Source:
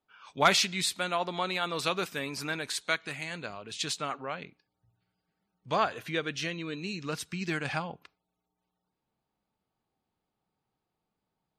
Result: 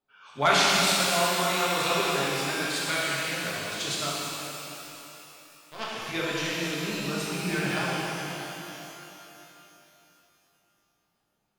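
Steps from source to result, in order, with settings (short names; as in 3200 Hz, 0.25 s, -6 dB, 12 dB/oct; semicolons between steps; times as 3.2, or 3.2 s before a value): 4.09–5.92 power-law curve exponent 3; shimmer reverb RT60 3.2 s, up +12 st, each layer -8 dB, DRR -7 dB; gain -3 dB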